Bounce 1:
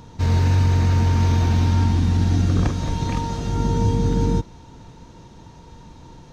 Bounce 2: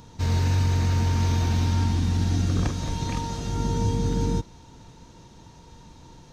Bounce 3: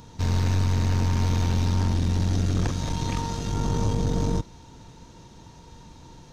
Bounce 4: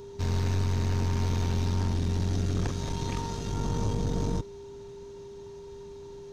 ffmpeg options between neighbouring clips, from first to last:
-af "highshelf=f=3400:g=7,volume=0.562"
-af "aeval=exprs='(tanh(12.6*val(0)+0.55)-tanh(0.55))/12.6':c=same,volume=1.5"
-af "aeval=exprs='val(0)+0.0141*sin(2*PI*400*n/s)':c=same,volume=0.596"

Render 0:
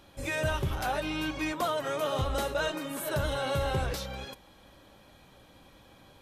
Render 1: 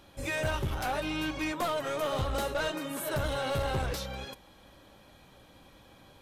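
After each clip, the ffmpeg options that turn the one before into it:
-af "aeval=exprs='clip(val(0),-1,0.0335)':c=same"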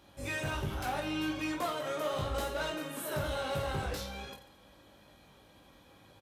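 -filter_complex "[0:a]highpass=46,asplit=2[s0][s1];[s1]aecho=0:1:20|48|87.2|142.1|218.9:0.631|0.398|0.251|0.158|0.1[s2];[s0][s2]amix=inputs=2:normalize=0,volume=0.562"

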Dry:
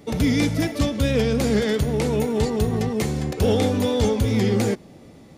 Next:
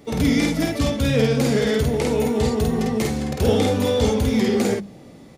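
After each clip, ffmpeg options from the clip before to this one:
-filter_complex "[0:a]bandreject=f=50:t=h:w=6,bandreject=f=100:t=h:w=6,bandreject=f=150:t=h:w=6,bandreject=f=200:t=h:w=6,asplit=2[s0][s1];[s1]adelay=50,volume=0.794[s2];[s0][s2]amix=inputs=2:normalize=0"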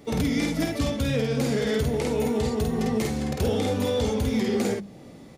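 -af "alimiter=limit=0.2:level=0:latency=1:release=320,volume=0.841"

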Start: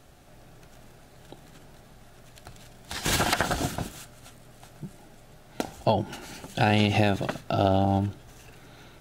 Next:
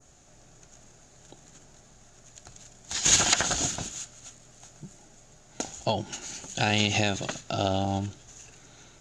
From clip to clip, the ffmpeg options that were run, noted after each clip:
-af "lowpass=f=6800:t=q:w=9.4,adynamicequalizer=threshold=0.01:dfrequency=3400:dqfactor=0.78:tfrequency=3400:tqfactor=0.78:attack=5:release=100:ratio=0.375:range=3.5:mode=boostabove:tftype=bell,volume=0.562"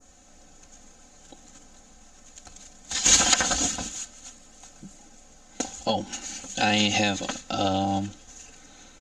-af "aecho=1:1:3.9:0.91"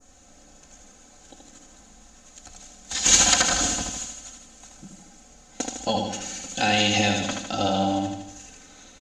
-af "aecho=1:1:78|156|234|312|390|468|546:0.596|0.322|0.174|0.0938|0.0506|0.0274|0.0148"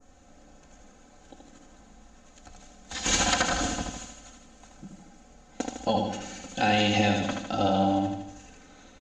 -af "lowpass=f=1900:p=1"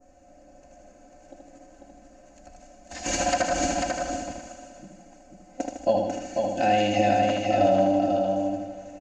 -filter_complex "[0:a]superequalizer=6b=2:8b=3.55:10b=0.631:13b=0.355,asplit=2[s0][s1];[s1]aecho=0:1:494|988|1482:0.631|0.0946|0.0142[s2];[s0][s2]amix=inputs=2:normalize=0,volume=0.668"

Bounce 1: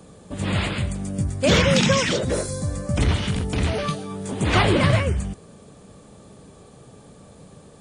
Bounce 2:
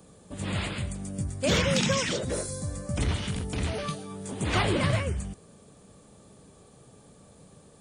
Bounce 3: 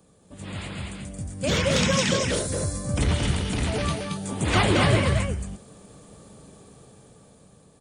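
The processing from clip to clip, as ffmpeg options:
-af "highshelf=f=8000:g=8.5,volume=0.422"
-af "aecho=1:1:225:0.668,dynaudnorm=f=360:g=9:m=3.35,volume=0.562"

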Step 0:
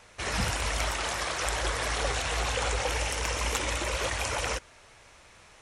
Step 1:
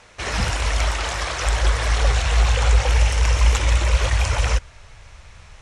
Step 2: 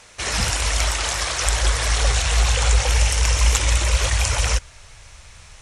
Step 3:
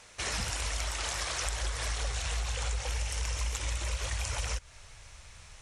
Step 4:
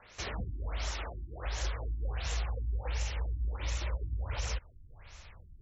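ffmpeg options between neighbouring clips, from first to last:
-af "lowpass=8100,asubboost=boost=7:cutoff=110,volume=1.88"
-af "crystalizer=i=2.5:c=0,volume=0.841"
-af "acompressor=threshold=0.0708:ratio=6,volume=0.447"
-filter_complex "[0:a]acrossover=split=680|5200[s0][s1][s2];[s1]asoftclip=type=tanh:threshold=0.0112[s3];[s0][s3][s2]amix=inputs=3:normalize=0,afftfilt=real='re*lt(b*sr/1024,330*pow(7800/330,0.5+0.5*sin(2*PI*1.4*pts/sr)))':imag='im*lt(b*sr/1024,330*pow(7800/330,0.5+0.5*sin(2*PI*1.4*pts/sr)))':win_size=1024:overlap=0.75"

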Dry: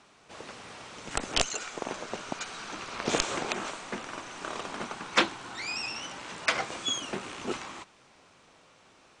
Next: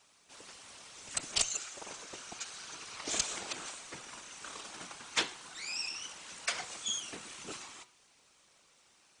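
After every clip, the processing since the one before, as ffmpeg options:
-af "afftfilt=real='hypot(re,im)*cos(2*PI*random(0))':imag='hypot(re,im)*sin(2*PI*random(1))':win_size=512:overlap=0.75,bandreject=f=122.6:t=h:w=4,bandreject=f=245.2:t=h:w=4,bandreject=f=367.8:t=h:w=4,bandreject=f=490.4:t=h:w=4,bandreject=f=613:t=h:w=4,bandreject=f=735.6:t=h:w=4,bandreject=f=858.2:t=h:w=4,bandreject=f=980.8:t=h:w=4,bandreject=f=1103.4:t=h:w=4,bandreject=f=1226:t=h:w=4,bandreject=f=1348.6:t=h:w=4,bandreject=f=1471.2:t=h:w=4,bandreject=f=1593.8:t=h:w=4,bandreject=f=1716.4:t=h:w=4,bandreject=f=1839:t=h:w=4,bandreject=f=1961.6:t=h:w=4,bandreject=f=2084.2:t=h:w=4,bandreject=f=2206.8:t=h:w=4,bandreject=f=2329.4:t=h:w=4,bandreject=f=2452:t=h:w=4,bandreject=f=2574.6:t=h:w=4,bandreject=f=2697.2:t=h:w=4,bandreject=f=2819.8:t=h:w=4,bandreject=f=2942.4:t=h:w=4,bandreject=f=3065:t=h:w=4,bandreject=f=3187.6:t=h:w=4,bandreject=f=3310.2:t=h:w=4,bandreject=f=3432.8:t=h:w=4,bandreject=f=3555.4:t=h:w=4,bandreject=f=3678:t=h:w=4,bandreject=f=3800.6:t=h:w=4,bandreject=f=3923.2:t=h:w=4,bandreject=f=4045.8:t=h:w=4,bandreject=f=4168.4:t=h:w=4,bandreject=f=4291:t=h:w=4,bandreject=f=4413.6:t=h:w=4,bandreject=f=4536.2:t=h:w=4,bandreject=f=4658.8:t=h:w=4,bandreject=f=4781.4:t=h:w=4,bandreject=f=4904:t=h:w=4,crystalizer=i=5:c=0,volume=0.422"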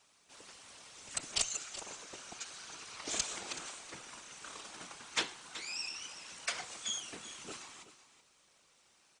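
-af "aecho=1:1:377:0.2,volume=0.75"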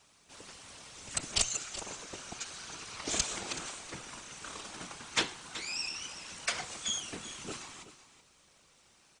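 -af "lowshelf=f=210:g=9.5,volume=1.5"

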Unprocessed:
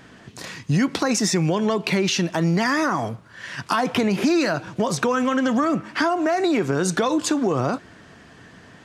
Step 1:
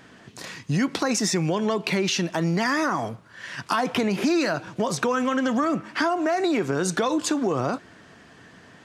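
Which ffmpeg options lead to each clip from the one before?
-af "lowshelf=f=110:g=-6.5,volume=0.794"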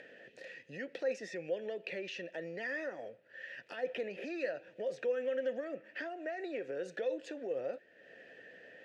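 -filter_complex "[0:a]acompressor=mode=upward:threshold=0.0355:ratio=2.5,asplit=3[s0][s1][s2];[s0]bandpass=f=530:t=q:w=8,volume=1[s3];[s1]bandpass=f=1840:t=q:w=8,volume=0.501[s4];[s2]bandpass=f=2480:t=q:w=8,volume=0.355[s5];[s3][s4][s5]amix=inputs=3:normalize=0,volume=0.668"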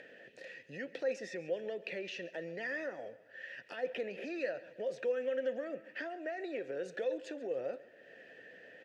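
-af "aecho=1:1:138|276|414|552:0.112|0.055|0.0269|0.0132"

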